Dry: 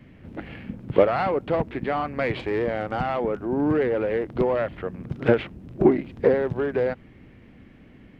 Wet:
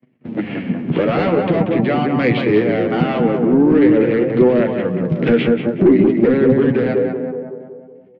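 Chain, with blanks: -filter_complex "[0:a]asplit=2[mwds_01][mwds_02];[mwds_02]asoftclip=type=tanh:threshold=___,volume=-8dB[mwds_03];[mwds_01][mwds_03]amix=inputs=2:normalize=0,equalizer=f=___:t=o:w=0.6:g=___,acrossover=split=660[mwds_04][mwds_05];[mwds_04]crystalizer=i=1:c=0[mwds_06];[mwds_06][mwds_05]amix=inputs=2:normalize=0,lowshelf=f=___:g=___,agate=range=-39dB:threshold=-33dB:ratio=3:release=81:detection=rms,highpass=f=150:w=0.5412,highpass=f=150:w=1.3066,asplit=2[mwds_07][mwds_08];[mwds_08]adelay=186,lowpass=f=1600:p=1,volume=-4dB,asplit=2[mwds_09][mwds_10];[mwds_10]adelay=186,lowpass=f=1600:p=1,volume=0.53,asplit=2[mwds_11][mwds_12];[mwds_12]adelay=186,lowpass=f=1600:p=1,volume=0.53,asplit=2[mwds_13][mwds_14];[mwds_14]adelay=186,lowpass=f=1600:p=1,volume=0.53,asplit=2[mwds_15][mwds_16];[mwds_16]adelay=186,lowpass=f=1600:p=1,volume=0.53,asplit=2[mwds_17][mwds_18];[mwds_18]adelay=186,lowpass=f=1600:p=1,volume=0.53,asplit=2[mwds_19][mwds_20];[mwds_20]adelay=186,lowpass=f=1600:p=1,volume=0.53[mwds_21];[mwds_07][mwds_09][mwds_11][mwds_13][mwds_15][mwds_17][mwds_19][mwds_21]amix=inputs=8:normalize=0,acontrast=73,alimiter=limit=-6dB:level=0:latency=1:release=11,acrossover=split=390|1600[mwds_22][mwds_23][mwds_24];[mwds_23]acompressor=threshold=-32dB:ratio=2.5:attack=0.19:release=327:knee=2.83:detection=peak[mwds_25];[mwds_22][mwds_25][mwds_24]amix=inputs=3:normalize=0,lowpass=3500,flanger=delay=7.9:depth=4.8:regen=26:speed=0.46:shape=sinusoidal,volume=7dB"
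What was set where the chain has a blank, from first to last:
-21.5dB, 1500, -3, 390, 4.5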